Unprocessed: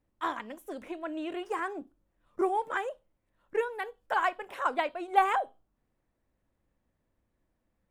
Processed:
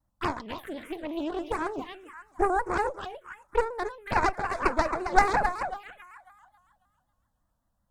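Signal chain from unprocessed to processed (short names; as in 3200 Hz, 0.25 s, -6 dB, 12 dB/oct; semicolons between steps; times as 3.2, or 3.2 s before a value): on a send: thinning echo 0.273 s, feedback 46%, high-pass 730 Hz, level -4 dB; on the sum: added harmonics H 3 -26 dB, 4 -7 dB, 5 -31 dB, 8 -25 dB, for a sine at -10.5 dBFS; envelope phaser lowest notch 390 Hz, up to 3100 Hz, full sweep at -28 dBFS; shaped vibrato square 5.4 Hz, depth 100 cents; gain +3 dB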